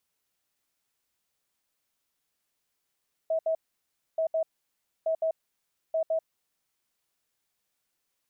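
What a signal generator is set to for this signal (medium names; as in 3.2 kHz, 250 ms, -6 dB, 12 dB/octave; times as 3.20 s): beep pattern sine 645 Hz, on 0.09 s, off 0.07 s, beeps 2, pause 0.63 s, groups 4, -23.5 dBFS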